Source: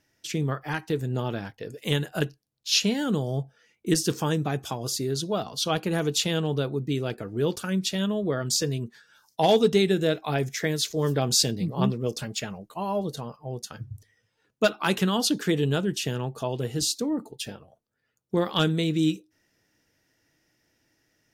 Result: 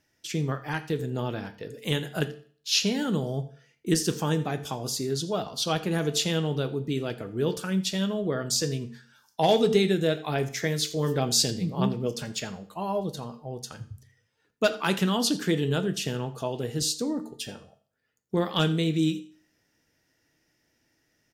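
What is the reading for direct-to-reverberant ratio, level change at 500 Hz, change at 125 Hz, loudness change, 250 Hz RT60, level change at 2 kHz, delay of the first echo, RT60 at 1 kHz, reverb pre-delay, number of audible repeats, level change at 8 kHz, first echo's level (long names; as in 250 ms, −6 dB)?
9.5 dB, −1.0 dB, −1.0 dB, −1.0 dB, 0.50 s, −1.0 dB, 85 ms, 0.45 s, 9 ms, 1, −1.0 dB, −20.0 dB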